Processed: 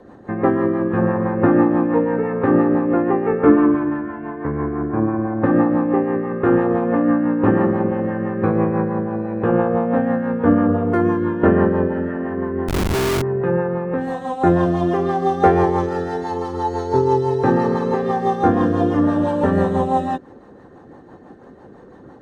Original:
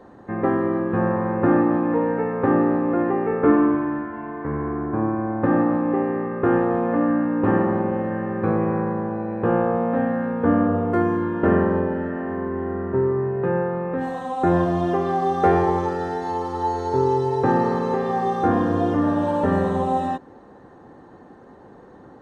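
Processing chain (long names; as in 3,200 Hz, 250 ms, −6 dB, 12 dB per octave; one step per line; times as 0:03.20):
rotating-speaker cabinet horn 6 Hz
0:12.68–0:13.22: comparator with hysteresis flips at −26 dBFS
level +5 dB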